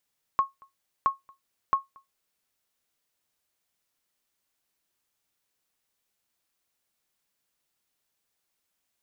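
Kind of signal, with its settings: sonar ping 1.09 kHz, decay 0.16 s, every 0.67 s, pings 3, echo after 0.23 s, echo -29 dB -14 dBFS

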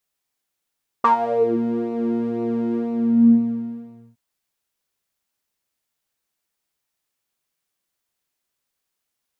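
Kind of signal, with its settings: synth patch with pulse-width modulation A#3, oscillator 2 saw, interval -12 st, oscillator 2 level -5.5 dB, filter bandpass, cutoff 140 Hz, Q 11, filter envelope 3 oct, filter decay 0.52 s, attack 7.5 ms, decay 0.11 s, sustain -9 dB, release 1.41 s, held 1.71 s, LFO 2 Hz, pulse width 28%, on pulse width 14%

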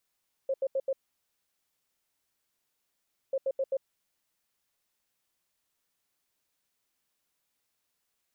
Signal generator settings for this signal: beep pattern sine 537 Hz, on 0.05 s, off 0.08 s, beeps 4, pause 2.40 s, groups 2, -25.5 dBFS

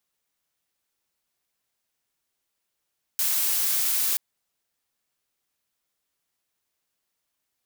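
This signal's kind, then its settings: noise blue, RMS -24 dBFS 0.98 s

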